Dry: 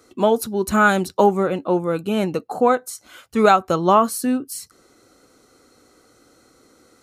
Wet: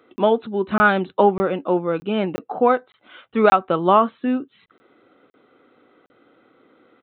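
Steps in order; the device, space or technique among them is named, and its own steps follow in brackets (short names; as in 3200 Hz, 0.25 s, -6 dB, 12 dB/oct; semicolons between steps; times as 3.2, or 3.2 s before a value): call with lost packets (HPF 170 Hz 12 dB/oct; downsampling 8000 Hz; packet loss)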